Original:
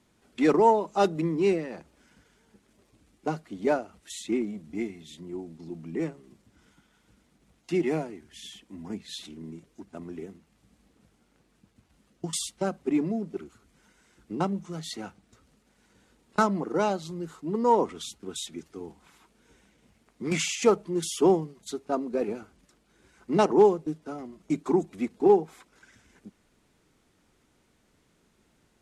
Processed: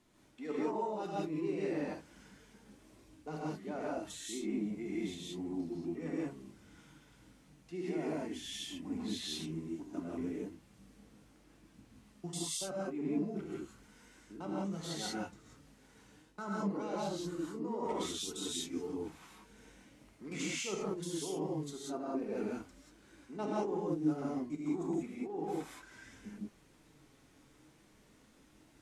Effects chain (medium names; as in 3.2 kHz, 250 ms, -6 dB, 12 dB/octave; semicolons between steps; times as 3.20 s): reverse; compression 6:1, threshold -37 dBFS, peak gain reduction 21.5 dB; reverse; flange 0.35 Hz, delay 2.8 ms, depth 4.9 ms, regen +64%; gated-style reverb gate 210 ms rising, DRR -5.5 dB